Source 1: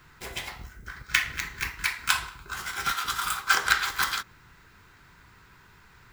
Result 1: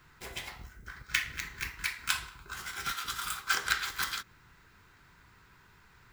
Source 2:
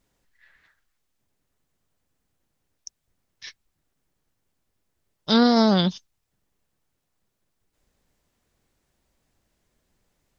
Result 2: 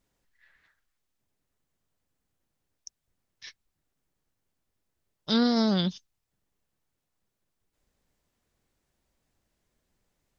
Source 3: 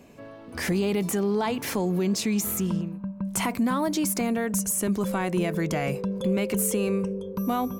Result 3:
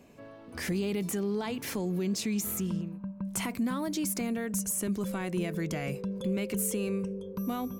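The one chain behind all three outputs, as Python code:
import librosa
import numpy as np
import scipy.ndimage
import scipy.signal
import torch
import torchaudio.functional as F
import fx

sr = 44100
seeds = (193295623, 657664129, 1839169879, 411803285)

y = fx.dynamic_eq(x, sr, hz=860.0, q=0.99, threshold_db=-40.0, ratio=4.0, max_db=-6)
y = y * librosa.db_to_amplitude(-5.0)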